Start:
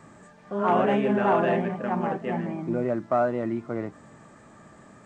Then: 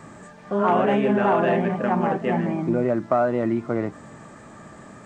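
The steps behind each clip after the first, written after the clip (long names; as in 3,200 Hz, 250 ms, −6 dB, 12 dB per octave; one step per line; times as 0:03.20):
downward compressor 2.5 to 1, threshold −25 dBFS, peak gain reduction 5.5 dB
level +7 dB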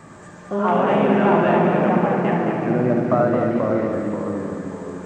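delay with pitch and tempo change per echo 104 ms, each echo −2 semitones, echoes 3, each echo −6 dB
on a send: echo machine with several playback heads 73 ms, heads first and third, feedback 63%, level −7 dB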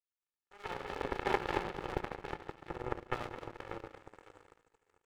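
lower of the sound and its delayed copy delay 2.3 ms
power curve on the samples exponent 3
one half of a high-frequency compander encoder only
level −7.5 dB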